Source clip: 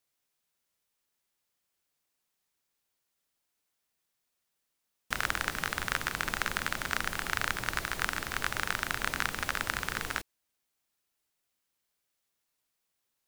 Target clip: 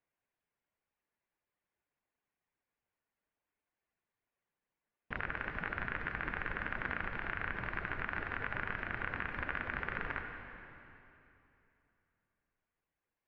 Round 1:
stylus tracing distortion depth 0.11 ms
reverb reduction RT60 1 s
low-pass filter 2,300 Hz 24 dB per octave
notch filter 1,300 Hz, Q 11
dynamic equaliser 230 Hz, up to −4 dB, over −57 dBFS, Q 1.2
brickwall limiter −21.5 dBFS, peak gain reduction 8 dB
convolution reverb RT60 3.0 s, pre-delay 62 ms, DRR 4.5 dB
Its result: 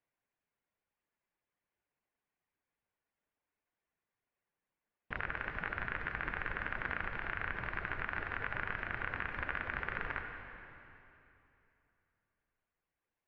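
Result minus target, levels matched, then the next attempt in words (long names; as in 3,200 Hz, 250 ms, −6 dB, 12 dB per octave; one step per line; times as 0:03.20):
250 Hz band −3.0 dB
stylus tracing distortion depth 0.11 ms
reverb reduction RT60 1 s
low-pass filter 2,300 Hz 24 dB per octave
notch filter 1,300 Hz, Q 11
brickwall limiter −21.5 dBFS, peak gain reduction 8.5 dB
convolution reverb RT60 3.0 s, pre-delay 62 ms, DRR 4.5 dB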